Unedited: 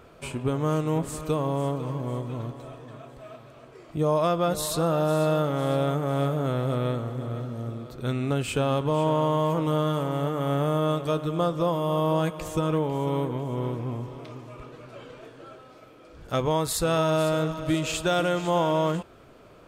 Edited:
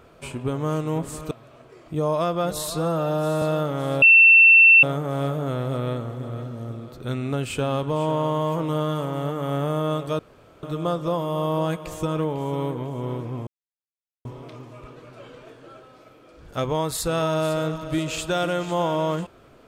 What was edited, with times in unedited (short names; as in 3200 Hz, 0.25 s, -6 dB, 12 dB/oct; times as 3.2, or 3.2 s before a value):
1.31–3.34 cut
4.73–5.21 stretch 1.5×
5.81 add tone 2690 Hz -8.5 dBFS 0.81 s
11.17 insert room tone 0.44 s
14.01 insert silence 0.78 s